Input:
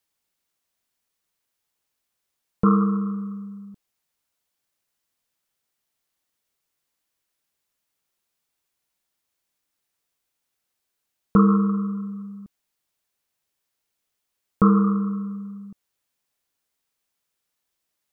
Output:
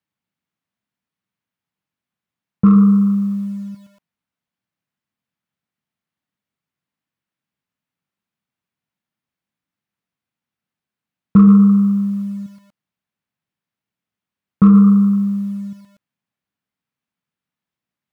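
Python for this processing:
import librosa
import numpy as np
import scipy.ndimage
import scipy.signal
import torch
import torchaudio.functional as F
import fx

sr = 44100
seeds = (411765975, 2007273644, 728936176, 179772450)

p1 = scipy.signal.sosfilt(scipy.signal.butter(2, 110.0, 'highpass', fs=sr, output='sos'), x)
p2 = fx.bass_treble(p1, sr, bass_db=-5, treble_db=-14)
p3 = np.clip(p2, -10.0 ** (-15.5 / 20.0), 10.0 ** (-15.5 / 20.0))
p4 = p2 + (p3 * librosa.db_to_amplitude(-7.0))
p5 = fx.low_shelf_res(p4, sr, hz=280.0, db=12.5, q=1.5)
p6 = fx.echo_crushed(p5, sr, ms=120, feedback_pct=35, bits=6, wet_db=-14.0)
y = p6 * librosa.db_to_amplitude(-5.0)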